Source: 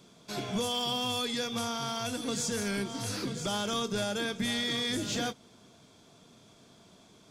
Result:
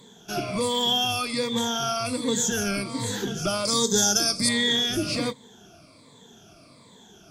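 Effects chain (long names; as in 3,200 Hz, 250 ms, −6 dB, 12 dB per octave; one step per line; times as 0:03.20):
rippled gain that drifts along the octave scale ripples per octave 1, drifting −1.3 Hz, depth 16 dB
0:03.65–0:04.49: high shelf with overshoot 3,800 Hz +10 dB, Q 3
level +3.5 dB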